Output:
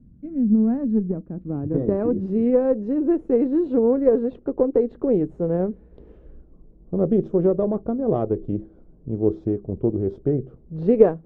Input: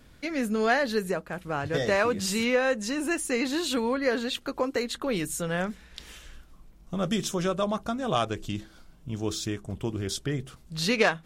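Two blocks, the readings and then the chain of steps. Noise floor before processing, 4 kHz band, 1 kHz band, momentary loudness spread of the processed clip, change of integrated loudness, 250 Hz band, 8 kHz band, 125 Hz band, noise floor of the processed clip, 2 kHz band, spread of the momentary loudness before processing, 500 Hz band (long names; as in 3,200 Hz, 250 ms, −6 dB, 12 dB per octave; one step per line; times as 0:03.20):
−54 dBFS, below −30 dB, −5.0 dB, 10 LU, +6.0 dB, +9.0 dB, below −40 dB, +6.5 dB, −51 dBFS, below −20 dB, 12 LU, +8.0 dB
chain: harmonic generator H 6 −24 dB, 7 −29 dB, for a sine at −9 dBFS
low-pass filter sweep 200 Hz → 430 Hz, 0:00.22–0:02.93
level +6 dB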